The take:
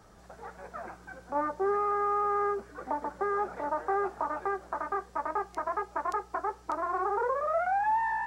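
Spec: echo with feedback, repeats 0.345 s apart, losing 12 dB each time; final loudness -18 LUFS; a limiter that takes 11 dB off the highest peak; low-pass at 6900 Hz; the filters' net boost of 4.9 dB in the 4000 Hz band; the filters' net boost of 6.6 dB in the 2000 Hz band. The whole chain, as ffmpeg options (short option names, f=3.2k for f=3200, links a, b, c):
-af "lowpass=6.9k,equalizer=f=2k:t=o:g=8,equalizer=f=4k:t=o:g=4.5,alimiter=level_in=4.5dB:limit=-24dB:level=0:latency=1,volume=-4.5dB,aecho=1:1:345|690|1035:0.251|0.0628|0.0157,volume=19dB"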